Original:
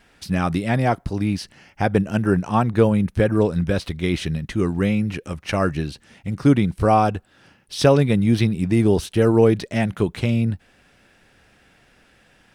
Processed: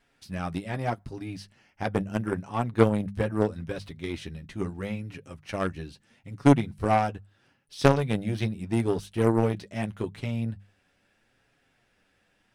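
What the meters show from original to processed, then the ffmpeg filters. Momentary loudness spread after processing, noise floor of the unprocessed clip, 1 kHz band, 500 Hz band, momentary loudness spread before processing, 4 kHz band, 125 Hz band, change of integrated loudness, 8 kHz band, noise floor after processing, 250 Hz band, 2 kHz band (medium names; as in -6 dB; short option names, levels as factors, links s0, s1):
16 LU, -57 dBFS, -6.5 dB, -8.0 dB, 10 LU, -9.5 dB, -8.5 dB, -7.5 dB, -9.0 dB, -69 dBFS, -8.5 dB, -7.5 dB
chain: -af "flanger=delay=7.1:depth=3.6:regen=-24:speed=0.78:shape=sinusoidal,aeval=exprs='0.531*(cos(1*acos(clip(val(0)/0.531,-1,1)))-cos(1*PI/2))+0.133*(cos(3*acos(clip(val(0)/0.531,-1,1)))-cos(3*PI/2))':c=same,bandreject=f=50:t=h:w=6,bandreject=f=100:t=h:w=6,bandreject=f=150:t=h:w=6,bandreject=f=200:t=h:w=6,volume=1.41"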